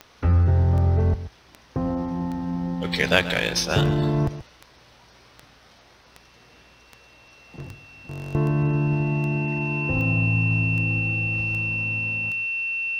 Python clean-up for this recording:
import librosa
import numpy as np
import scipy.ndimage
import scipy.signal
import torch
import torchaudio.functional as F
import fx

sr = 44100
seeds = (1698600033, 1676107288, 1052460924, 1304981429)

y = fx.fix_declick_ar(x, sr, threshold=10.0)
y = fx.notch(y, sr, hz=2700.0, q=30.0)
y = fx.fix_echo_inverse(y, sr, delay_ms=133, level_db=-14.5)